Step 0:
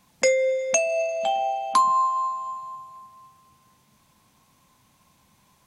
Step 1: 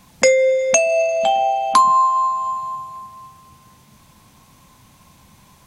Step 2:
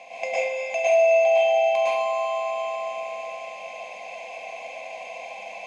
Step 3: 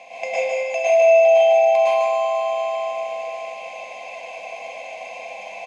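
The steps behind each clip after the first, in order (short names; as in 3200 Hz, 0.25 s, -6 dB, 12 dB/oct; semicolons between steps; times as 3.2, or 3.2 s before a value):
low shelf 130 Hz +7 dB; in parallel at -1 dB: compressor, threshold -30 dBFS, peak gain reduction 14 dB; on the sum: gain +4.5 dB
per-bin compression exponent 0.4; double band-pass 1300 Hz, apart 1.8 oct; plate-style reverb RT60 0.73 s, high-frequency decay 0.9×, pre-delay 95 ms, DRR -8 dB; gain -8.5 dB
echo 0.153 s -4.5 dB; gain +1.5 dB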